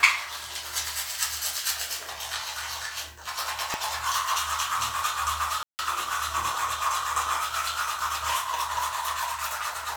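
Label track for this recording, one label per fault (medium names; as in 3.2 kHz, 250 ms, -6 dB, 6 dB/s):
3.740000	3.740000	pop
5.630000	5.790000	dropout 159 ms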